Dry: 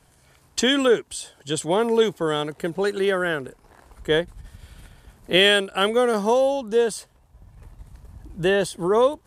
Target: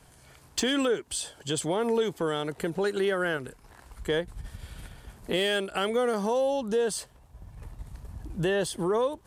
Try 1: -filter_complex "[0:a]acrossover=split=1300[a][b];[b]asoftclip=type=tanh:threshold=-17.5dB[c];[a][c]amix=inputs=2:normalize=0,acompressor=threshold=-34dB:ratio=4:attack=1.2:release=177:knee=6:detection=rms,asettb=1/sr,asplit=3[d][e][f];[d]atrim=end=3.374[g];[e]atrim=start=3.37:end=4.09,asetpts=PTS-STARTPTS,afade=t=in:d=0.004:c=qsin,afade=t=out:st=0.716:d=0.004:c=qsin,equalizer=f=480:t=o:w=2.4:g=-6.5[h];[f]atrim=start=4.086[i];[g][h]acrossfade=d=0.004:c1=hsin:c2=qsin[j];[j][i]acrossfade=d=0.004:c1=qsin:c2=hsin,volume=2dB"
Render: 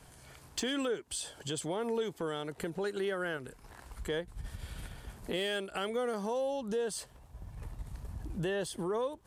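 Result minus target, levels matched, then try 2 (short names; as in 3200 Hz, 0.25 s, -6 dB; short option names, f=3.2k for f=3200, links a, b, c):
compressor: peak gain reduction +7.5 dB
-filter_complex "[0:a]acrossover=split=1300[a][b];[b]asoftclip=type=tanh:threshold=-17.5dB[c];[a][c]amix=inputs=2:normalize=0,acompressor=threshold=-24dB:ratio=4:attack=1.2:release=177:knee=6:detection=rms,asettb=1/sr,asplit=3[d][e][f];[d]atrim=end=3.374[g];[e]atrim=start=3.37:end=4.09,asetpts=PTS-STARTPTS,afade=t=in:d=0.004:c=qsin,afade=t=out:st=0.716:d=0.004:c=qsin,equalizer=f=480:t=o:w=2.4:g=-6.5[h];[f]atrim=start=4.086[i];[g][h]acrossfade=d=0.004:c1=hsin:c2=qsin[j];[j][i]acrossfade=d=0.004:c1=qsin:c2=hsin,volume=2dB"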